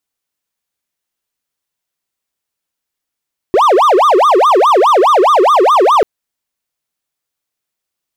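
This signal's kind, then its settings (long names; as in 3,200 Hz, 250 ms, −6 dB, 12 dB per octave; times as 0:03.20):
siren wail 357–1,230 Hz 4.8 per second triangle −3.5 dBFS 2.49 s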